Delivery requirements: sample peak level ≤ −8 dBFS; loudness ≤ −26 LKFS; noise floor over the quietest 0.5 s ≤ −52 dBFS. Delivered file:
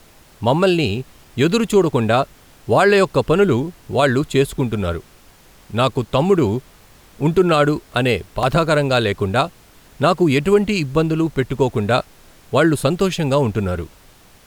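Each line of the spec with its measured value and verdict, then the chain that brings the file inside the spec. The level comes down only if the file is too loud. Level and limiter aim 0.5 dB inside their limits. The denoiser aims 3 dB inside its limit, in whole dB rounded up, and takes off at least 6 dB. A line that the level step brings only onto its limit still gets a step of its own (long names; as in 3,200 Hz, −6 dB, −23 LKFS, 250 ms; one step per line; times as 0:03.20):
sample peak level −4.0 dBFS: out of spec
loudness −18.0 LKFS: out of spec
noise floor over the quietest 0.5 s −48 dBFS: out of spec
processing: level −8.5 dB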